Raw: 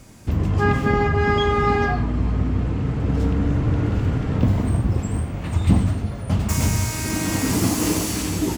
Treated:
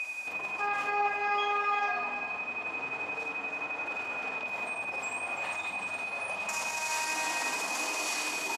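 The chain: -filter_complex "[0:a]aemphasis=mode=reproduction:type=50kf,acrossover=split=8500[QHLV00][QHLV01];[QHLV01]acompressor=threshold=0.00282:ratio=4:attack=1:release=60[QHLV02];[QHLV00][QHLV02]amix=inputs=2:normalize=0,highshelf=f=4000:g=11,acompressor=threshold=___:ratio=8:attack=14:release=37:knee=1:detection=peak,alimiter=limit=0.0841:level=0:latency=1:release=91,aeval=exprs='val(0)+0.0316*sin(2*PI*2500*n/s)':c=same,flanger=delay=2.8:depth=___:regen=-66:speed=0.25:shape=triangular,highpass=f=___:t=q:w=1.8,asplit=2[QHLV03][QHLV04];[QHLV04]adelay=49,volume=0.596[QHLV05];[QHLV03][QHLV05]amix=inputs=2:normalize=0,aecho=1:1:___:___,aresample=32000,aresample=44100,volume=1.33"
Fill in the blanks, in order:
0.0631, 9.1, 780, 336, 0.282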